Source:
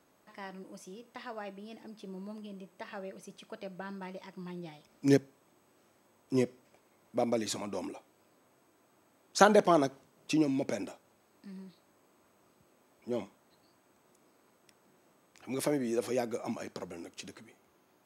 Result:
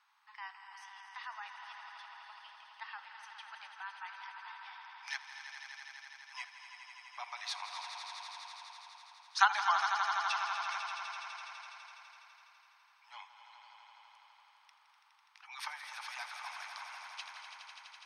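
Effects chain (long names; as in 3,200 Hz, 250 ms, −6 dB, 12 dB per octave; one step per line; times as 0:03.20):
Butterworth high-pass 840 Hz 72 dB per octave
echo that builds up and dies away 83 ms, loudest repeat 5, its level −10.5 dB
on a send at −12.5 dB: convolution reverb RT60 1.1 s, pre-delay 196 ms
on the sum: gate on every frequency bin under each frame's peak −30 dB strong
Savitzky-Golay smoothing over 15 samples
level +1 dB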